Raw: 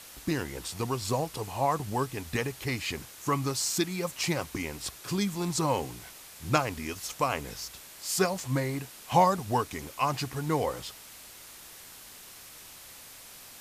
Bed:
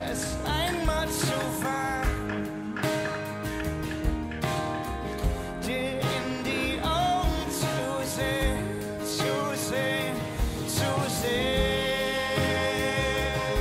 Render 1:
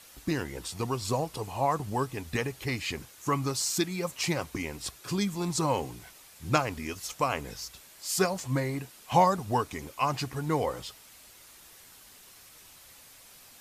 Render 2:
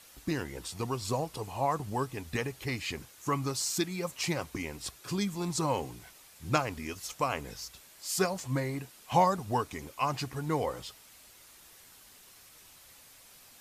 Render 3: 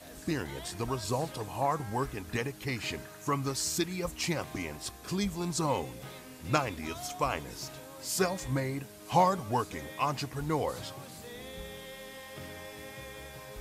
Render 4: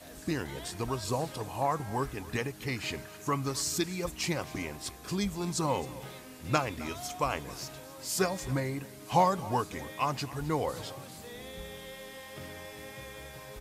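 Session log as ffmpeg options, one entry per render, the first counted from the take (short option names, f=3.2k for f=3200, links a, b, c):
-af "afftdn=nr=6:nf=-49"
-af "volume=-2.5dB"
-filter_complex "[1:a]volume=-18.5dB[a];[0:a][a]amix=inputs=2:normalize=0"
-af "aecho=1:1:265:0.112"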